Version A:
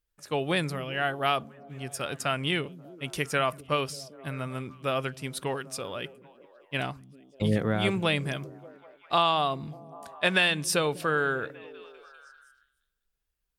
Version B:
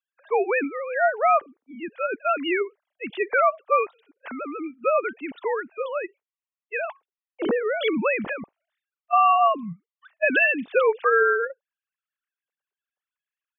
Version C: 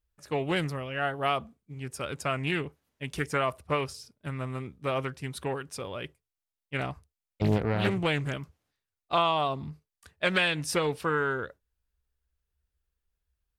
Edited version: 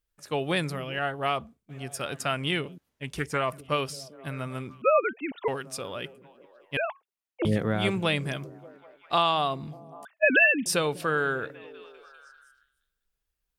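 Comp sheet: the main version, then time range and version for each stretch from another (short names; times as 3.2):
A
0.99–1.69 from C
2.78–3.52 from C
4.82–5.48 from B
6.77–7.45 from B
10.05–10.66 from B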